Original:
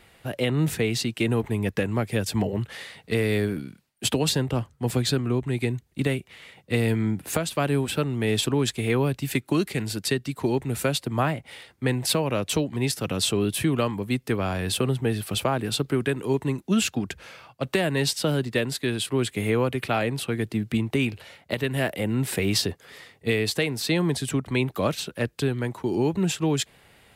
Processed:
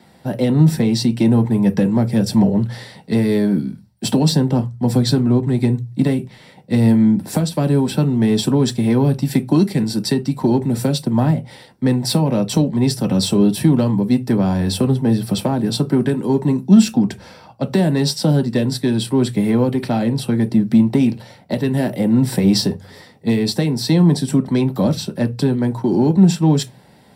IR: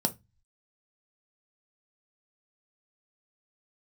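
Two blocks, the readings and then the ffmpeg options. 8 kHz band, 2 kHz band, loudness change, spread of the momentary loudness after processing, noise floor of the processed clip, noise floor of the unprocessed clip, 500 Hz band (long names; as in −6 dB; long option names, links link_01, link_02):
+2.0 dB, −2.5 dB, +9.0 dB, 7 LU, −47 dBFS, −59 dBFS, +5.0 dB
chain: -filter_complex "[0:a]acrossover=split=410|3000[link_01][link_02][link_03];[link_02]acompressor=threshold=-28dB:ratio=6[link_04];[link_01][link_04][link_03]amix=inputs=3:normalize=0,asplit=2[link_05][link_06];[link_06]asoftclip=type=hard:threshold=-22dB,volume=-3.5dB[link_07];[link_05][link_07]amix=inputs=2:normalize=0[link_08];[1:a]atrim=start_sample=2205[link_09];[link_08][link_09]afir=irnorm=-1:irlink=0,volume=-7dB"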